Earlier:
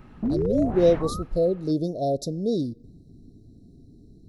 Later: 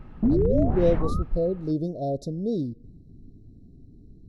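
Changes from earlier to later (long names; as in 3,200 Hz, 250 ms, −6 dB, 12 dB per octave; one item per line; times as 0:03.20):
speech −5.5 dB
master: add spectral tilt −2 dB per octave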